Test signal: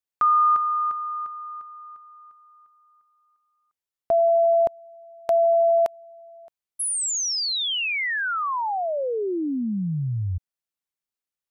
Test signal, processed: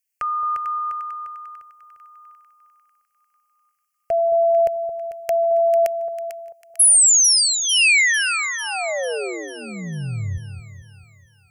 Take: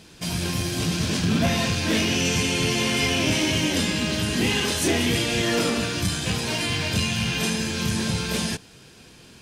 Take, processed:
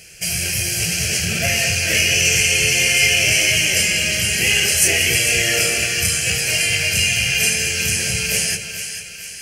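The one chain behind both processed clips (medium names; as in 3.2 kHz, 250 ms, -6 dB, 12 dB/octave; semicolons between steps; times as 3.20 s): resonant high shelf 1.9 kHz +12.5 dB, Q 1.5; static phaser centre 1 kHz, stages 6; on a send: two-band feedback delay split 1 kHz, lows 220 ms, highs 447 ms, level -9 dB; on the sum: trim +2 dB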